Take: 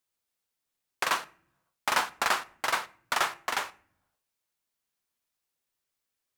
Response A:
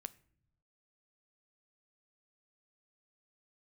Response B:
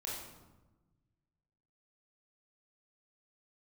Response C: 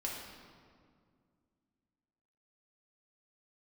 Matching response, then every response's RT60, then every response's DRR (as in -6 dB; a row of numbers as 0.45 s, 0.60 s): A; no single decay rate, 1.1 s, 2.1 s; 14.0 dB, -5.0 dB, -3.5 dB